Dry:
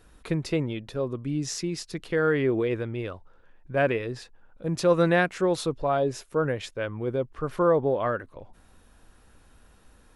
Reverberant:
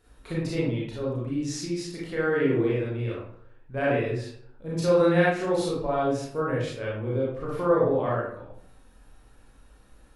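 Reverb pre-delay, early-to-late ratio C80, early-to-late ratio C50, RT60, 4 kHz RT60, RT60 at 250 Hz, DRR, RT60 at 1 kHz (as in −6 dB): 28 ms, 4.5 dB, 0.0 dB, 0.65 s, 0.40 s, 0.65 s, −6.5 dB, 0.60 s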